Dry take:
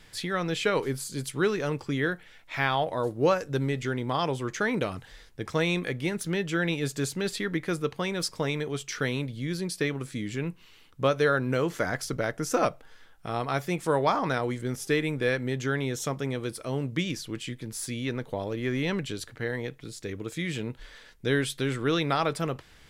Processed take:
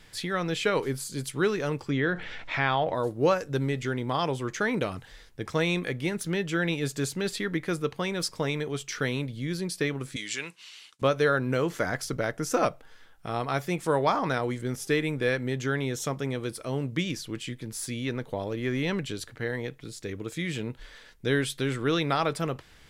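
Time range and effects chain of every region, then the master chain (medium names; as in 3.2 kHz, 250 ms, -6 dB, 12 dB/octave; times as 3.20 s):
1.90–2.95 s: Gaussian low-pass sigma 1.5 samples + level flattener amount 50%
10.16–11.02 s: frequency weighting ITU-R 468 + expander -56 dBFS + tape noise reduction on one side only encoder only
whole clip: none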